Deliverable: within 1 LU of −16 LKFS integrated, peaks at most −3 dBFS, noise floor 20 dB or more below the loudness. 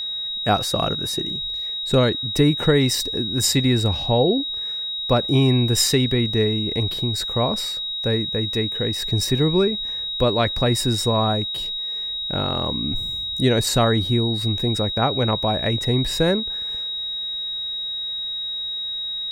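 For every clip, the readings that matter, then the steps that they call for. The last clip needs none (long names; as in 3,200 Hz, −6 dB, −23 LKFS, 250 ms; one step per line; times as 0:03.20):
interfering tone 3,800 Hz; level of the tone −25 dBFS; integrated loudness −21.0 LKFS; sample peak −5.0 dBFS; target loudness −16.0 LKFS
→ notch filter 3,800 Hz, Q 30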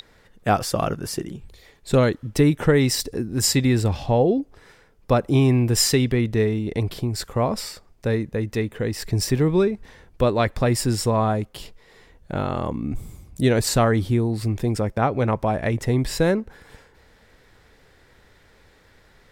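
interfering tone none found; integrated loudness −22.0 LKFS; sample peak −6.0 dBFS; target loudness −16.0 LKFS
→ level +6 dB
brickwall limiter −3 dBFS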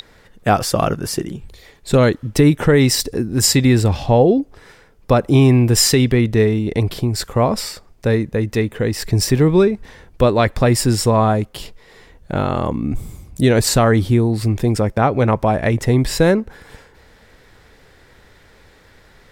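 integrated loudness −16.5 LKFS; sample peak −3.0 dBFS; background noise floor −50 dBFS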